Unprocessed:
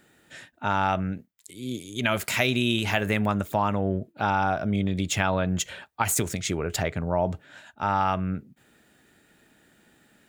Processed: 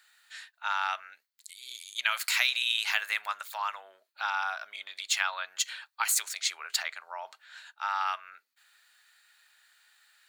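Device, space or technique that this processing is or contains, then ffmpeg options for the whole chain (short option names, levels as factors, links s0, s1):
headphones lying on a table: -af "highpass=f=1100:w=0.5412,highpass=f=1100:w=1.3066,equalizer=f=4300:t=o:w=0.28:g=10.5,volume=0.891"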